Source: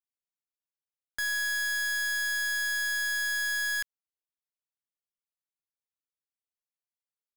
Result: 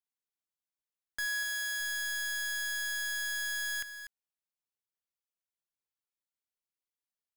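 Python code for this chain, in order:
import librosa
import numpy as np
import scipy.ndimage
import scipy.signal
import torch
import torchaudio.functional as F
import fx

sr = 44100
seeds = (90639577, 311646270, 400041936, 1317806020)

y = fx.highpass(x, sr, hz=fx.line((1.25, 230.0), (1.79, 59.0)), slope=12, at=(1.25, 1.79), fade=0.02)
y = y + 10.0 ** (-11.5 / 20.0) * np.pad(y, (int(244 * sr / 1000.0), 0))[:len(y)]
y = y * 10.0 ** (-3.5 / 20.0)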